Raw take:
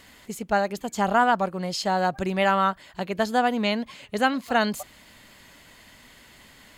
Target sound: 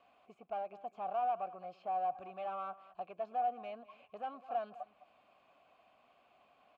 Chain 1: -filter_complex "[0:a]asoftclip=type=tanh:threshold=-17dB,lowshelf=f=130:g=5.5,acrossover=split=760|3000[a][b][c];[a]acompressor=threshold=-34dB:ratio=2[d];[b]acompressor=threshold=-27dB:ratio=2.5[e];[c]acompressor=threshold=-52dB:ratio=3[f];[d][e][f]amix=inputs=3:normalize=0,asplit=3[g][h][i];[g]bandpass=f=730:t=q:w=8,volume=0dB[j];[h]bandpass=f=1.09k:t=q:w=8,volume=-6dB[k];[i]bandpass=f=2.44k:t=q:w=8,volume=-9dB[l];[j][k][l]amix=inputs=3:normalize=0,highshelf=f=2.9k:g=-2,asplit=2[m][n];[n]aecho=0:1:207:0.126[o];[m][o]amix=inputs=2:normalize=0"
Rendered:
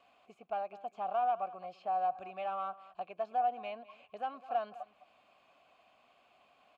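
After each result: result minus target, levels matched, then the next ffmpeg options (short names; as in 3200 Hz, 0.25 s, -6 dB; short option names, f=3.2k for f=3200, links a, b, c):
soft clip: distortion -6 dB; 4000 Hz band +2.5 dB
-filter_complex "[0:a]asoftclip=type=tanh:threshold=-24dB,lowshelf=f=130:g=5.5,acrossover=split=760|3000[a][b][c];[a]acompressor=threshold=-34dB:ratio=2[d];[b]acompressor=threshold=-27dB:ratio=2.5[e];[c]acompressor=threshold=-52dB:ratio=3[f];[d][e][f]amix=inputs=3:normalize=0,asplit=3[g][h][i];[g]bandpass=f=730:t=q:w=8,volume=0dB[j];[h]bandpass=f=1.09k:t=q:w=8,volume=-6dB[k];[i]bandpass=f=2.44k:t=q:w=8,volume=-9dB[l];[j][k][l]amix=inputs=3:normalize=0,highshelf=f=2.9k:g=-2,asplit=2[m][n];[n]aecho=0:1:207:0.126[o];[m][o]amix=inputs=2:normalize=0"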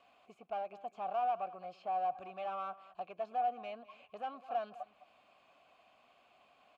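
4000 Hz band +4.0 dB
-filter_complex "[0:a]asoftclip=type=tanh:threshold=-24dB,lowshelf=f=130:g=5.5,acrossover=split=760|3000[a][b][c];[a]acompressor=threshold=-34dB:ratio=2[d];[b]acompressor=threshold=-27dB:ratio=2.5[e];[c]acompressor=threshold=-52dB:ratio=3[f];[d][e][f]amix=inputs=3:normalize=0,asplit=3[g][h][i];[g]bandpass=f=730:t=q:w=8,volume=0dB[j];[h]bandpass=f=1.09k:t=q:w=8,volume=-6dB[k];[i]bandpass=f=2.44k:t=q:w=8,volume=-9dB[l];[j][k][l]amix=inputs=3:normalize=0,highshelf=f=2.9k:g=-10.5,asplit=2[m][n];[n]aecho=0:1:207:0.126[o];[m][o]amix=inputs=2:normalize=0"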